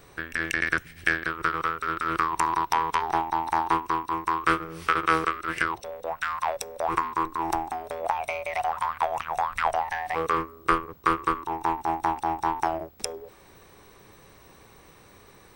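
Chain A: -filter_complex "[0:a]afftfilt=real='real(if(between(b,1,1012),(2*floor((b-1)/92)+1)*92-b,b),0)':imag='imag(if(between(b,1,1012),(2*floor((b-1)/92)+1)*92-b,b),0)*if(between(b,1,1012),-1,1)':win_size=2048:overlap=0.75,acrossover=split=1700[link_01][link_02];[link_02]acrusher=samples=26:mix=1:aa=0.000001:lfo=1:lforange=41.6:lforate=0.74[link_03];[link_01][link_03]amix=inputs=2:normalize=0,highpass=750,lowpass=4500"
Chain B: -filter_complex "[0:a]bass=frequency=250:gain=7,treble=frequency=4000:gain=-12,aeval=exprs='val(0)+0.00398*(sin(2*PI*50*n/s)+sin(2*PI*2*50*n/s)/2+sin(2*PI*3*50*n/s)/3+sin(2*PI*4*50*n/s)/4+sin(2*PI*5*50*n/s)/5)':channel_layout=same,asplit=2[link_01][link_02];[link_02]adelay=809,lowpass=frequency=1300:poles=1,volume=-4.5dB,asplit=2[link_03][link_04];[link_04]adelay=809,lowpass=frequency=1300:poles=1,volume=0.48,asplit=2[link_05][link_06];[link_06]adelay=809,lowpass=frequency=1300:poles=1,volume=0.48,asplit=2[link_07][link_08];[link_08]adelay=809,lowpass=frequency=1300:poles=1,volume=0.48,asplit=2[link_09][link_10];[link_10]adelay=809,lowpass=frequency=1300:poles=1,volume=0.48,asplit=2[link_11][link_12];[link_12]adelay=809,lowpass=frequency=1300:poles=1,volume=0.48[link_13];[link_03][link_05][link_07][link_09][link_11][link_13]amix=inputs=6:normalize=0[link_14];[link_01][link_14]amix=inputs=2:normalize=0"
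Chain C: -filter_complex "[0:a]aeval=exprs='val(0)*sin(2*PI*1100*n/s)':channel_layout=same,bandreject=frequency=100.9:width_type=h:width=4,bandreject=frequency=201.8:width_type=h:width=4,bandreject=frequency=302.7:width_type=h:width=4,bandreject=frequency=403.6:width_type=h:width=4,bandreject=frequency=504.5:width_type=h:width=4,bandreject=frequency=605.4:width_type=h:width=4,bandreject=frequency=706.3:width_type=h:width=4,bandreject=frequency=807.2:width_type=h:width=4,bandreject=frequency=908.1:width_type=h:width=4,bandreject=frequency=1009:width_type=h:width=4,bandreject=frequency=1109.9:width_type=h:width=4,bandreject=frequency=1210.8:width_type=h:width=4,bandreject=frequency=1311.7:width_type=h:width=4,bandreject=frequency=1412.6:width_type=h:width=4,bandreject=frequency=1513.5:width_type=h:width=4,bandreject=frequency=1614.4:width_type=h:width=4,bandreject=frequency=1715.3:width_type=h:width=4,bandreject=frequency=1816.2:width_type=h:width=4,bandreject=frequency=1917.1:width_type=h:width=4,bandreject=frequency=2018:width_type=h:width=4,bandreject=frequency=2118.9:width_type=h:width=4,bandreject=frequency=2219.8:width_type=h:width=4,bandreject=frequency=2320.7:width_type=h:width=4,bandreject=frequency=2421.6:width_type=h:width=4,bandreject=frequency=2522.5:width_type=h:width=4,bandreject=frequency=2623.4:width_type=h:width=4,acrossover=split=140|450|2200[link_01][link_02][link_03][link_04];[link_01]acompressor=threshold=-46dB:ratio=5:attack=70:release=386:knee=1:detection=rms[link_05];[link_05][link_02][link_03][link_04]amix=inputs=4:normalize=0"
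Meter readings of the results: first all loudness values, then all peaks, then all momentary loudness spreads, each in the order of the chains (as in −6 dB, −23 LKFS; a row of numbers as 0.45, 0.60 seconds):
−30.5, −26.5, −30.0 LKFS; −8.5, −6.5, −9.5 dBFS; 8, 13, 5 LU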